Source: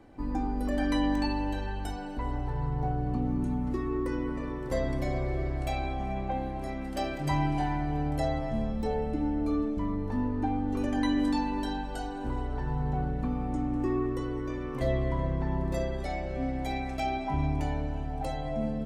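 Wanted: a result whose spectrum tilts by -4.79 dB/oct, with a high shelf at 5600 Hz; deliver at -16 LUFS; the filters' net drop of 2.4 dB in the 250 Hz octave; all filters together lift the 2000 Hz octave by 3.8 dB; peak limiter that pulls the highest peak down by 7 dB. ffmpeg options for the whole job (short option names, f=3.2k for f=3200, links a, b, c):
-af "equalizer=f=250:t=o:g=-3,equalizer=f=2k:t=o:g=5.5,highshelf=f=5.6k:g=-8.5,volume=18dB,alimiter=limit=-6dB:level=0:latency=1"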